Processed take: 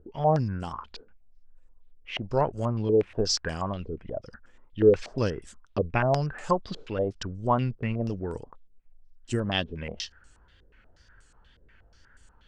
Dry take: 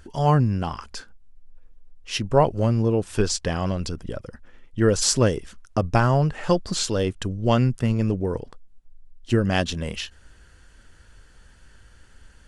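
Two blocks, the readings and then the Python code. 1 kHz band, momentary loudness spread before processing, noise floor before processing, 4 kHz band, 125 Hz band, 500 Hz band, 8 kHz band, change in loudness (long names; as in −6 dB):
−3.5 dB, 14 LU, −52 dBFS, −5.0 dB, −8.0 dB, −2.5 dB, −12.0 dB, −5.0 dB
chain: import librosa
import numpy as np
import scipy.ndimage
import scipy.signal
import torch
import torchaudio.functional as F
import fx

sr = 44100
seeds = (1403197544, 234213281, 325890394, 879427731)

y = fx.wow_flutter(x, sr, seeds[0], rate_hz=2.1, depth_cents=77.0)
y = fx.filter_held_lowpass(y, sr, hz=8.3, low_hz=450.0, high_hz=7900.0)
y = y * 10.0 ** (-8.0 / 20.0)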